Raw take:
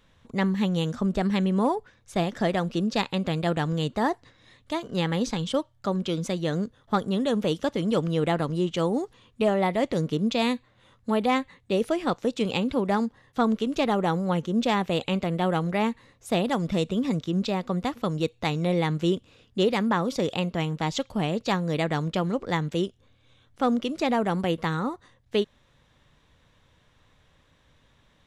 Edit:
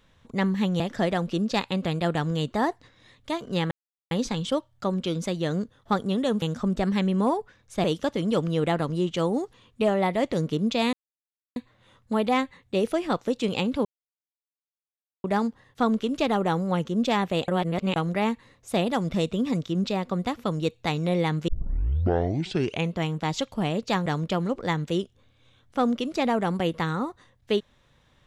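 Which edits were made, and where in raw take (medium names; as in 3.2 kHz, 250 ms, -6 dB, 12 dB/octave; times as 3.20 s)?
0.80–2.22 s: move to 7.44 s
5.13 s: insert silence 0.40 s
10.53 s: insert silence 0.63 s
12.82 s: insert silence 1.39 s
15.06–15.54 s: reverse
19.06 s: tape start 1.47 s
21.64–21.90 s: delete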